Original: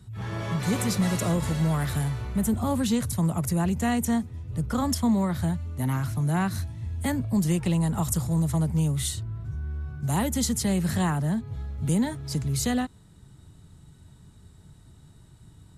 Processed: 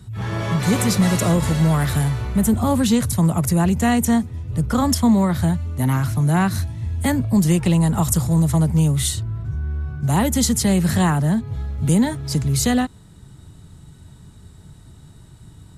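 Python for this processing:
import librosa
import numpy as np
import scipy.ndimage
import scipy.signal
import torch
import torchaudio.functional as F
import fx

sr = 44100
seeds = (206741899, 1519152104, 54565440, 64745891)

y = fx.high_shelf(x, sr, hz=5000.0, db=-5.0, at=(9.42, 10.25))
y = y * librosa.db_to_amplitude(7.5)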